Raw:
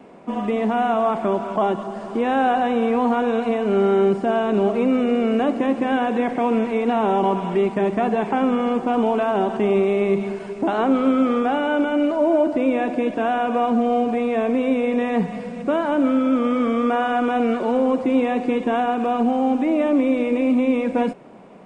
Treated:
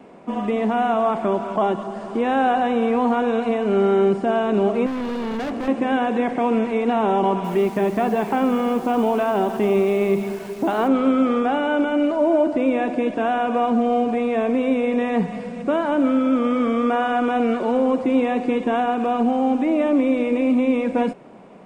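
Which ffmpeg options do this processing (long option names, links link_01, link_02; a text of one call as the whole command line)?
ffmpeg -i in.wav -filter_complex "[0:a]asettb=1/sr,asplit=3[link_01][link_02][link_03];[link_01]atrim=end=4.864[link_04];[link_02]atrim=start=4.86:end=5.68,asetpts=PTS-STARTPTS,afade=type=in:duration=0.004:curve=qsin,afade=type=out:start_time=0.816:duration=0.004:curve=qsin,volume=24dB,asoftclip=hard,volume=-24dB[link_05];[link_03]atrim=start=5.676[link_06];[link_04][link_05]acrossfade=duration=0.004:curve1=hsin:curve2=qsin[link_07];[link_07][link_06]acrossfade=duration=0.004:curve1=qsin:curve2=hsin,asettb=1/sr,asplit=3[link_08][link_09][link_10];[link_08]atrim=end=7.444[link_11];[link_09]atrim=start=7.44:end=10.88,asetpts=PTS-STARTPTS,afade=type=in:duration=0.004:curve=qsin,afade=type=out:start_time=3.436:duration=0.004:curve=qsin,acrusher=bits=8:dc=4:mix=0:aa=0.000001[link_12];[link_10]atrim=start=10.876[link_13];[link_11][link_12]acrossfade=duration=0.004:curve1=hsin:curve2=qsin[link_14];[link_14][link_13]acrossfade=duration=0.004:curve1=qsin:curve2=hsin" out.wav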